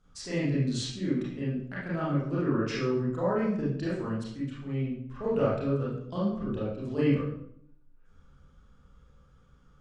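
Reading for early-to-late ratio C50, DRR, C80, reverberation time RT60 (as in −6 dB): −0.5 dB, −9.0 dB, 5.0 dB, 0.70 s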